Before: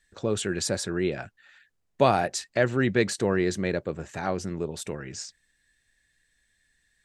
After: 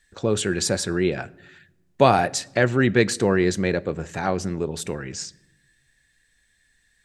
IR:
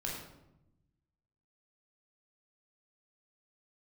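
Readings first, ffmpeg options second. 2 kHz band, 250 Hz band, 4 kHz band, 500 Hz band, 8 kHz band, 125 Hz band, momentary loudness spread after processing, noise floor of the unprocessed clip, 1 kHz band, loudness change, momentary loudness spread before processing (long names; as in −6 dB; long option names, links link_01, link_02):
+5.0 dB, +5.0 dB, +5.0 dB, +4.5 dB, +5.0 dB, +5.5 dB, 13 LU, −73 dBFS, +5.0 dB, +4.5 dB, 13 LU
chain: -filter_complex "[0:a]bandreject=frequency=620:width=19,asplit=2[link_01][link_02];[1:a]atrim=start_sample=2205[link_03];[link_02][link_03]afir=irnorm=-1:irlink=0,volume=-21dB[link_04];[link_01][link_04]amix=inputs=2:normalize=0,volume=4.5dB"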